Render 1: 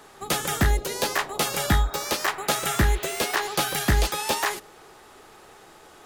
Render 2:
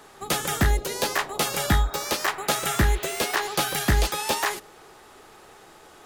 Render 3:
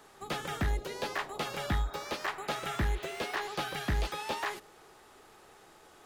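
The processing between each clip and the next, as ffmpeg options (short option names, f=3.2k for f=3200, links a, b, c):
-af anull
-filter_complex "[0:a]asoftclip=type=tanh:threshold=-15dB,acrossover=split=4400[a][b];[b]acompressor=threshold=-43dB:ratio=4:attack=1:release=60[c];[a][c]amix=inputs=2:normalize=0,volume=-7.5dB"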